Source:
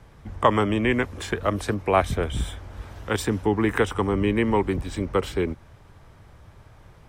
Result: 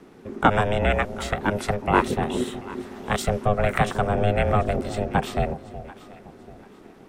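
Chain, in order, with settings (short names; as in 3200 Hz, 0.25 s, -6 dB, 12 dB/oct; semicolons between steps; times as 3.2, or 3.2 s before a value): ring modulator 310 Hz; echo with dull and thin repeats by turns 0.369 s, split 800 Hz, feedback 56%, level -13 dB; gain +3.5 dB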